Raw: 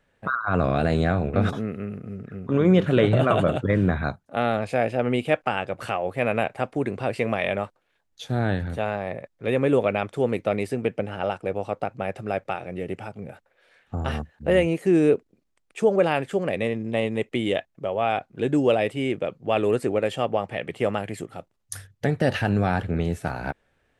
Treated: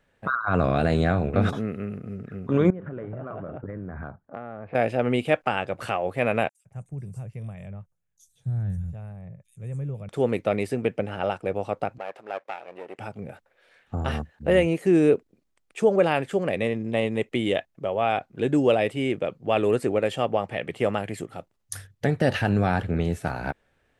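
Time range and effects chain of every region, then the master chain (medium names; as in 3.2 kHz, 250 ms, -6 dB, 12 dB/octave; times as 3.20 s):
2.70–4.75 s: low-pass 1.7 kHz 24 dB/octave + compression 12:1, threshold -31 dBFS
6.49–10.09 s: FFT filter 170 Hz 0 dB, 250 Hz -21 dB, 4.4 kHz -26 dB, 6.2 kHz -6 dB + bands offset in time highs, lows 160 ms, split 4 kHz
11.98–12.99 s: partial rectifier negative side -12 dB + high-pass 500 Hz + treble shelf 4.6 kHz -10.5 dB
whole clip: none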